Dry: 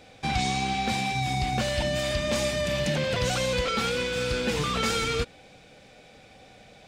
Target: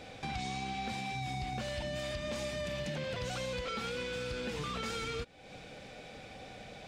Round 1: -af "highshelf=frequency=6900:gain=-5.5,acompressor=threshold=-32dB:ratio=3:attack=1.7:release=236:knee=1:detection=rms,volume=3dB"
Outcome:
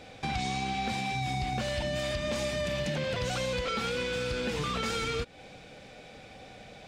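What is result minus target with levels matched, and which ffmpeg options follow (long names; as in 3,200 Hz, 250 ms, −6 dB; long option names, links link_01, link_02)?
downward compressor: peak gain reduction −6 dB
-af "highshelf=frequency=6900:gain=-5.5,acompressor=threshold=-41dB:ratio=3:attack=1.7:release=236:knee=1:detection=rms,volume=3dB"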